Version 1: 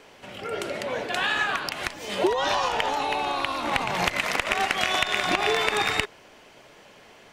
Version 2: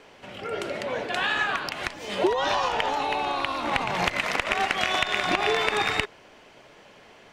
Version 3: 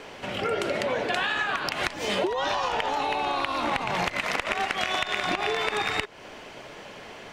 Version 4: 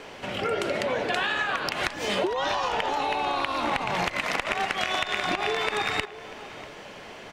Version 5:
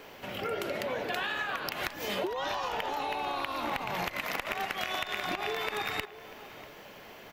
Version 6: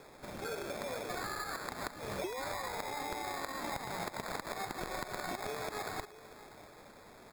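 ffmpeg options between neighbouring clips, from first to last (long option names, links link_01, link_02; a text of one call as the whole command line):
ffmpeg -i in.wav -af "highshelf=frequency=8000:gain=-9.5" out.wav
ffmpeg -i in.wav -af "acompressor=threshold=-32dB:ratio=10,volume=8.5dB" out.wav
ffmpeg -i in.wav -filter_complex "[0:a]asplit=2[link_01][link_02];[link_02]adelay=641.4,volume=-15dB,highshelf=frequency=4000:gain=-14.4[link_03];[link_01][link_03]amix=inputs=2:normalize=0" out.wav
ffmpeg -i in.wav -af "aexciter=amount=4.9:drive=9.4:freq=12000,volume=-6.5dB" out.wav
ffmpeg -i in.wav -af "acrusher=samples=15:mix=1:aa=0.000001,volume=-6dB" out.wav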